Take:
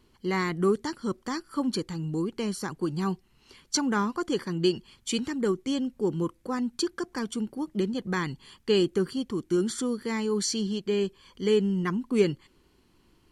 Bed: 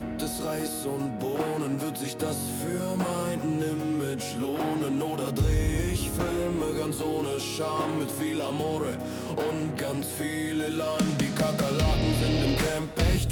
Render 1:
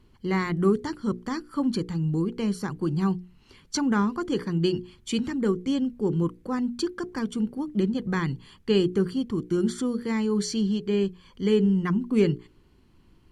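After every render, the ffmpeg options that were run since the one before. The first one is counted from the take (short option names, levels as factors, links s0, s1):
-af "bass=f=250:g=8,treble=f=4000:g=-5,bandreject=f=60:t=h:w=6,bandreject=f=120:t=h:w=6,bandreject=f=180:t=h:w=6,bandreject=f=240:t=h:w=6,bandreject=f=300:t=h:w=6,bandreject=f=360:t=h:w=6,bandreject=f=420:t=h:w=6,bandreject=f=480:t=h:w=6"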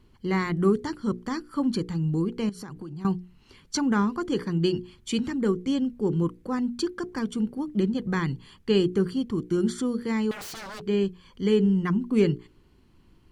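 -filter_complex "[0:a]asettb=1/sr,asplit=3[s0][s1][s2];[s0]atrim=end=2.494[s3];[s1]atrim=start=2.49:end=3.05,asetpts=PTS-STARTPTS,afade=t=in:d=0.004:c=qsin,afade=t=out:st=0.556:d=0.004:c=qsin,acompressor=threshold=0.02:ratio=16:attack=3.2:release=140:knee=1:detection=peak[s4];[s2]atrim=start=3.046[s5];[s3][s4]acrossfade=d=0.004:c1=hsin:c2=qsin[s6];[s6][s5]acrossfade=d=0.004:c1=qsin:c2=hsin,asettb=1/sr,asplit=3[s7][s8][s9];[s7]atrim=end=10.314[s10];[s8]atrim=start=10.31:end=10.83,asetpts=PTS-STARTPTS,afade=t=in:d=0.004:c=qsin,afade=t=out:st=0.516:d=0.004:c=qsin,aeval=exprs='0.02*(abs(mod(val(0)/0.02+3,4)-2)-1)':c=same[s11];[s9]atrim=start=10.826[s12];[s10][s11]acrossfade=d=0.004:c1=hsin:c2=qsin[s13];[s13][s12]acrossfade=d=0.004:c1=qsin:c2=hsin"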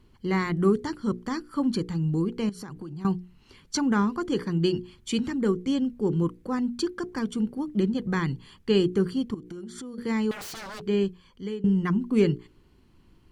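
-filter_complex "[0:a]asettb=1/sr,asplit=3[s0][s1][s2];[s0]atrim=end=9.344[s3];[s1]atrim=start=9.34:end=9.98,asetpts=PTS-STARTPTS,afade=t=in:d=0.004:c=qsin,afade=t=out:st=0.636:d=0.004:c=qsin,acompressor=threshold=0.0158:ratio=8:attack=3.2:release=140:knee=1:detection=peak[s4];[s2]atrim=start=9.976[s5];[s3][s4]acrossfade=d=0.004:c1=hsin:c2=qsin[s6];[s6][s5]acrossfade=d=0.004:c1=qsin:c2=hsin,asplit=2[s7][s8];[s7]atrim=end=11.64,asetpts=PTS-STARTPTS,afade=t=out:st=11.02:d=0.62:silence=0.1[s9];[s8]atrim=start=11.64,asetpts=PTS-STARTPTS,afade=t=in:d=0.004:c=hsin:silence=0.1[s10];[s9][s10]concat=n=2:v=0:a=1"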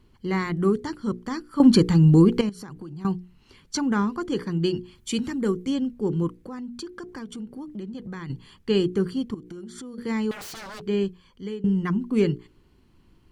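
-filter_complex "[0:a]asettb=1/sr,asplit=3[s0][s1][s2];[s0]atrim=end=4.954[s3];[s1]atrim=start=4.95:end=5.7,asetpts=PTS-STARTPTS,afade=t=in:d=0.004:c=qsin,afade=t=out:st=0.746:d=0.004:c=qsin,highshelf=f=8200:g=8.5[s4];[s2]atrim=start=5.696[s5];[s3][s4]acrossfade=d=0.004:c1=hsin:c2=qsin[s6];[s6][s5]acrossfade=d=0.004:c1=qsin:c2=hsin,asettb=1/sr,asplit=3[s7][s8][s9];[s7]atrim=end=6.364[s10];[s8]atrim=start=6.36:end=8.3,asetpts=PTS-STARTPTS,afade=t=in:d=0.004:c=qsin,afade=t=out:st=1.936:d=0.004:c=qsin,acompressor=threshold=0.0178:ratio=3:attack=3.2:release=140:knee=1:detection=peak[s11];[s9]atrim=start=8.296[s12];[s10][s11]acrossfade=d=0.004:c1=hsin:c2=qsin[s13];[s13][s12]acrossfade=d=0.004:c1=qsin:c2=hsin,asplit=3[s14][s15][s16];[s14]atrim=end=1.602[s17];[s15]atrim=start=1.598:end=2.412,asetpts=PTS-STARTPTS,volume=3.55[s18];[s16]atrim=start=2.408[s19];[s17][s18]acrossfade=d=0.004:c1=hsin:c2=hsin[s20];[s20][s19]acrossfade=d=0.004:c1=hsin:c2=hsin"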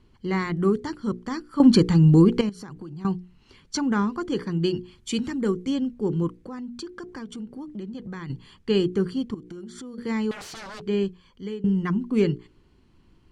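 -af "lowpass=8800"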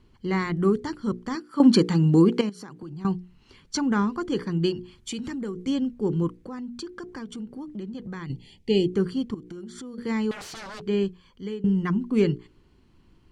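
-filter_complex "[0:a]asettb=1/sr,asplit=3[s0][s1][s2];[s0]atrim=end=1.354[s3];[s1]atrim=start=1.35:end=2.83,asetpts=PTS-STARTPTS,afade=t=in:d=0.004:c=qsin,afade=t=out:st=1.476:d=0.004:c=qsin,highpass=190[s4];[s2]atrim=start=2.826[s5];[s3][s4]acrossfade=d=0.004:c1=hsin:c2=qsin[s6];[s6][s5]acrossfade=d=0.004:c1=qsin:c2=hsin,asettb=1/sr,asplit=3[s7][s8][s9];[s7]atrim=end=4.724[s10];[s8]atrim=start=4.72:end=5.66,asetpts=PTS-STARTPTS,afade=t=in:d=0.004:c=qsin,afade=t=out:st=0.936:d=0.004:c=qsin,acompressor=threshold=0.0355:ratio=4:attack=3.2:release=140:knee=1:detection=peak[s11];[s9]atrim=start=5.656[s12];[s10][s11]acrossfade=d=0.004:c1=hsin:c2=qsin[s13];[s13][s12]acrossfade=d=0.004:c1=qsin:c2=hsin,asettb=1/sr,asplit=3[s14][s15][s16];[s14]atrim=end=8.264[s17];[s15]atrim=start=8.26:end=8.94,asetpts=PTS-STARTPTS,afade=t=in:d=0.004:c=qsin,afade=t=out:st=0.676:d=0.004:c=qsin,asuperstop=centerf=1300:order=8:qfactor=1.2[s18];[s16]atrim=start=8.936[s19];[s17][s18]acrossfade=d=0.004:c1=hsin:c2=qsin[s20];[s20][s19]acrossfade=d=0.004:c1=qsin:c2=hsin"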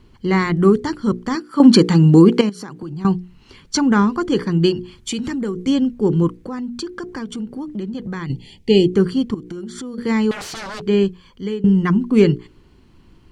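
-af "volume=2.66,alimiter=limit=0.891:level=0:latency=1"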